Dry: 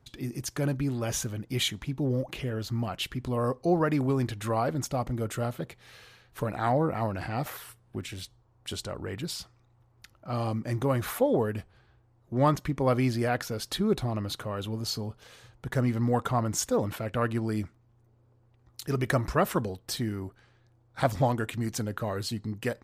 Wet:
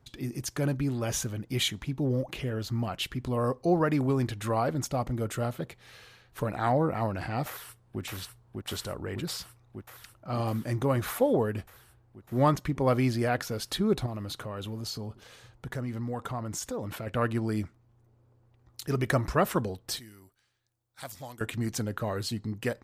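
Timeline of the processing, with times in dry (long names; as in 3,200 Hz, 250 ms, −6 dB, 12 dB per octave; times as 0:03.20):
0:07.47–0:08.01: delay throw 600 ms, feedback 80%, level −3 dB
0:14.06–0:17.07: downward compressor 2.5 to 1, threshold −34 dBFS
0:19.99–0:21.41: first-order pre-emphasis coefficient 0.9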